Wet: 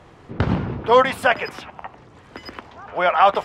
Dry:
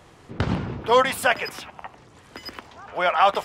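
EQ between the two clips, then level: LPF 2300 Hz 6 dB/oct; +4.0 dB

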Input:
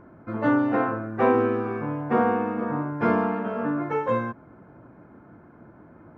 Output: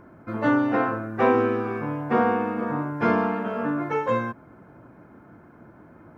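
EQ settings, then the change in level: high shelf 2900 Hz +9.5 dB; 0.0 dB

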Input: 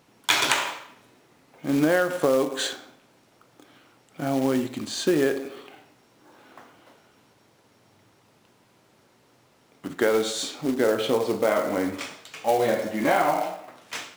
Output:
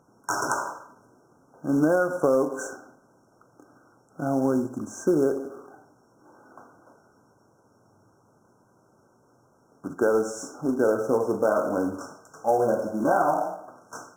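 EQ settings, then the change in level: brick-wall FIR band-stop 1600–5300 Hz; high shelf 7300 Hz -11 dB; 0.0 dB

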